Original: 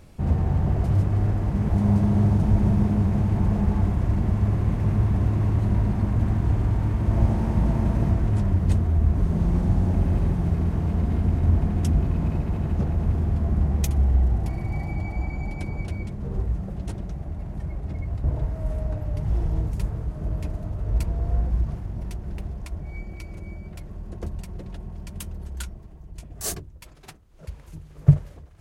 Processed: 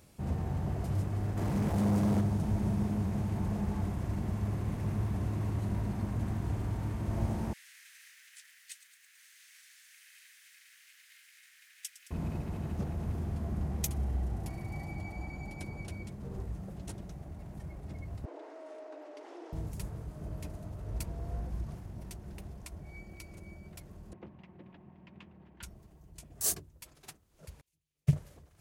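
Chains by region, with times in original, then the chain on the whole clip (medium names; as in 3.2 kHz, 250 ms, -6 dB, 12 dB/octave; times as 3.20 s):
1.37–2.21 s: bass shelf 69 Hz -9 dB + waveshaping leveller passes 2
7.53–12.11 s: steep high-pass 1.7 kHz 48 dB/octave + bit-crushed delay 109 ms, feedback 80%, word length 10-bit, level -14 dB
18.25–19.53 s: steep high-pass 290 Hz 72 dB/octave + distance through air 110 m + level flattener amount 50%
24.13–25.63 s: cabinet simulation 170–2600 Hz, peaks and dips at 450 Hz -8 dB, 650 Hz -4 dB, 1.4 kHz -6 dB + loudspeaker Doppler distortion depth 0.29 ms
27.61–28.13 s: resonant high shelf 1.8 kHz +10.5 dB, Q 1.5 + upward expansion 2.5:1, over -31 dBFS
whole clip: high-pass 100 Hz 6 dB/octave; treble shelf 5 kHz +11 dB; trim -8.5 dB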